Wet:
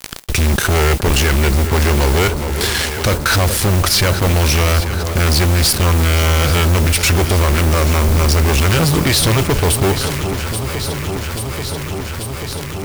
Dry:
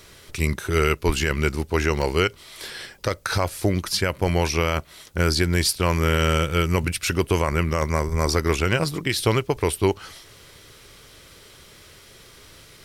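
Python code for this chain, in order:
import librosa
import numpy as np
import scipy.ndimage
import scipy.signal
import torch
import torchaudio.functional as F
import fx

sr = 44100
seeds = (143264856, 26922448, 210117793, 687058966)

p1 = fx.low_shelf(x, sr, hz=120.0, db=9.0)
p2 = fx.fuzz(p1, sr, gain_db=30.0, gate_db=-37.0)
p3 = fx.mod_noise(p2, sr, seeds[0], snr_db=16)
p4 = p3 + fx.echo_alternate(p3, sr, ms=418, hz=1100.0, feedback_pct=81, wet_db=-13.0, dry=0)
y = fx.env_flatten(p4, sr, amount_pct=50)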